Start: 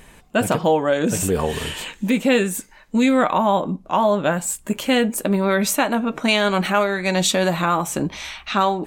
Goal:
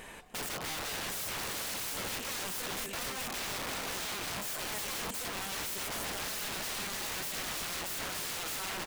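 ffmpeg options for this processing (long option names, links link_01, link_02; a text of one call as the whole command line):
ffmpeg -i in.wav -filter_complex "[0:a]bass=frequency=250:gain=-10,treble=frequency=4000:gain=-3,asplit=2[link_01][link_02];[link_02]alimiter=limit=-14.5dB:level=0:latency=1:release=67,volume=2dB[link_03];[link_01][link_03]amix=inputs=2:normalize=0,aecho=1:1:57|260|298|451|683:0.126|0.126|0.178|0.106|0.355,acompressor=threshold=-26dB:ratio=3,aeval=exprs='(mod(22.4*val(0)+1,2)-1)/22.4':channel_layout=same,volume=-5.5dB" out.wav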